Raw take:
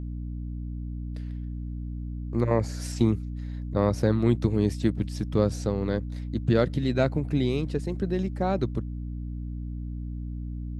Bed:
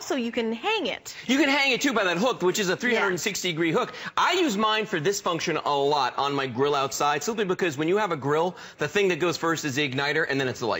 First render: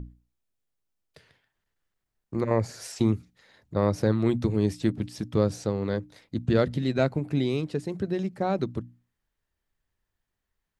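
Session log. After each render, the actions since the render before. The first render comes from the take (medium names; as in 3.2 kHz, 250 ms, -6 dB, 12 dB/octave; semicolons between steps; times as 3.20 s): hum notches 60/120/180/240/300 Hz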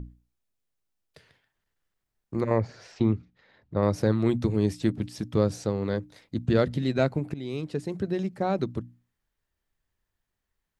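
2.58–3.83 s: distance through air 210 m; 7.34–7.96 s: fade in equal-power, from -18 dB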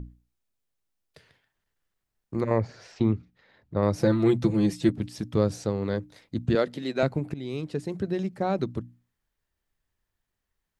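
3.99–4.89 s: comb 5.9 ms, depth 85%; 6.55–7.03 s: high-pass 300 Hz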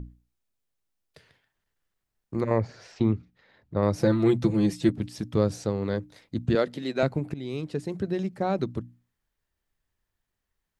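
no audible change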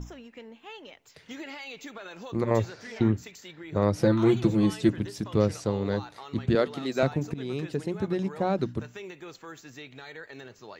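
add bed -19 dB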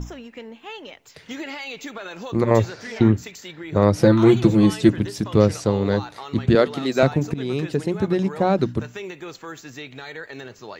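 trim +7.5 dB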